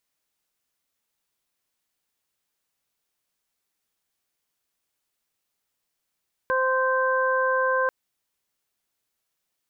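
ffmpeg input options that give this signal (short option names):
-f lavfi -i "aevalsrc='0.0668*sin(2*PI*520*t)+0.0596*sin(2*PI*1040*t)+0.0562*sin(2*PI*1560*t)':d=1.39:s=44100"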